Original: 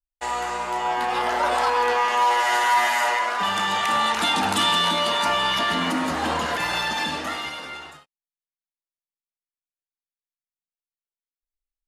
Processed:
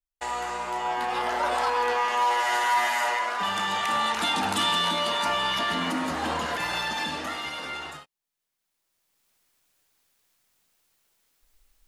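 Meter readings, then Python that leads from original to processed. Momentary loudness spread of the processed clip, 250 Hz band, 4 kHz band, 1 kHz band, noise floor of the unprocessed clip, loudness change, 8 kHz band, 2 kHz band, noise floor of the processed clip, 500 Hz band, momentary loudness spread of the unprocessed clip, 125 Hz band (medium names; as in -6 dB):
9 LU, -4.0 dB, -4.0 dB, -4.0 dB, under -85 dBFS, -4.0 dB, -4.0 dB, -4.0 dB, -83 dBFS, -4.0 dB, 9 LU, -4.0 dB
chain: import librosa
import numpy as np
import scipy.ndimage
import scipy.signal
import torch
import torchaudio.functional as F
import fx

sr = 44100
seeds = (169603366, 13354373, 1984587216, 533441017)

y = fx.recorder_agc(x, sr, target_db=-19.5, rise_db_per_s=16.0, max_gain_db=30)
y = y * 10.0 ** (-4.0 / 20.0)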